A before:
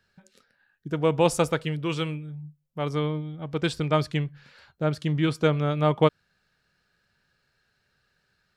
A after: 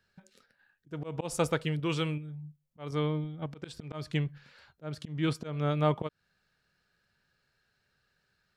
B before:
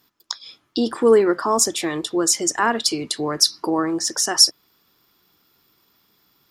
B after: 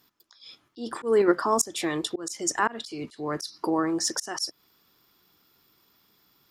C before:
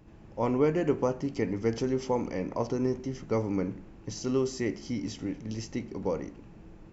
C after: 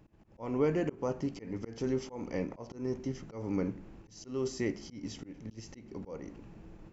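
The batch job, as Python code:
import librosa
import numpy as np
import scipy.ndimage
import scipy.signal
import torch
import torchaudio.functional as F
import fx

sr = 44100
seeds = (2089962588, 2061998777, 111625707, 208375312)

p1 = fx.level_steps(x, sr, step_db=17)
p2 = x + (p1 * librosa.db_to_amplitude(-1.0))
p3 = fx.auto_swell(p2, sr, attack_ms=233.0)
y = p3 * librosa.db_to_amplitude(-5.5)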